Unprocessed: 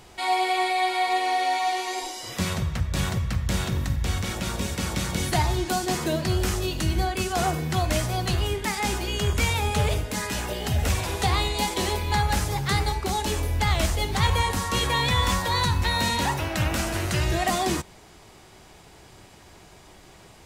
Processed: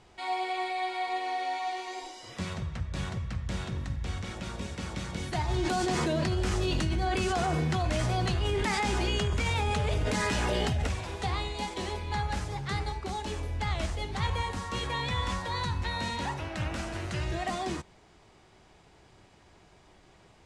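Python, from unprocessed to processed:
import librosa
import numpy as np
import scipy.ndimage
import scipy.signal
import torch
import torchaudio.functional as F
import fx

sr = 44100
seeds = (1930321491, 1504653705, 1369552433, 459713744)

y = fx.env_flatten(x, sr, amount_pct=100, at=(5.48, 10.87))
y = scipy.signal.sosfilt(scipy.signal.butter(4, 10000.0, 'lowpass', fs=sr, output='sos'), y)
y = fx.high_shelf(y, sr, hz=6400.0, db=-10.0)
y = y * librosa.db_to_amplitude(-8.0)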